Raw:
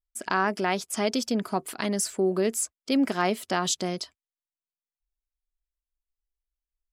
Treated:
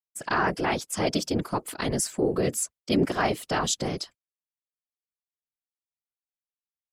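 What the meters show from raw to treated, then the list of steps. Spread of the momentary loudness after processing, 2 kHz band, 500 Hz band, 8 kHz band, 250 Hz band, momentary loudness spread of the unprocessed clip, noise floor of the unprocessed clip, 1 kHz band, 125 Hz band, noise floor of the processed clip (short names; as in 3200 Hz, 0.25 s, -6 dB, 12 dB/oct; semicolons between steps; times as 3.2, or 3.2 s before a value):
5 LU, +0.5 dB, 0.0 dB, 0.0 dB, -1.0 dB, 5 LU, under -85 dBFS, 0.0 dB, +4.5 dB, under -85 dBFS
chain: expander -44 dBFS; whisperiser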